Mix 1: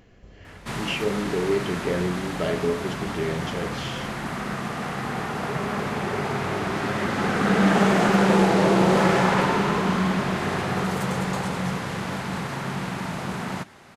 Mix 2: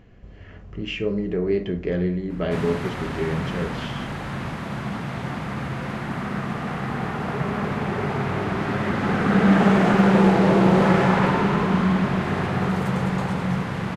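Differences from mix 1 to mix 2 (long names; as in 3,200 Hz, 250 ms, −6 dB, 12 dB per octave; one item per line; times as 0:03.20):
background: entry +1.85 s
master: add bass and treble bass +5 dB, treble −9 dB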